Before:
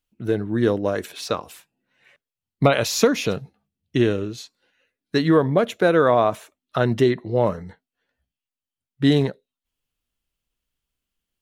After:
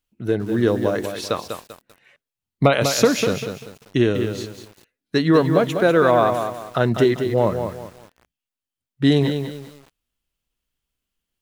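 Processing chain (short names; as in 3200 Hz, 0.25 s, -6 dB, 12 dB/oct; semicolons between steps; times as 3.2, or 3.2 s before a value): lo-fi delay 0.196 s, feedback 35%, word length 7-bit, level -7 dB; gain +1 dB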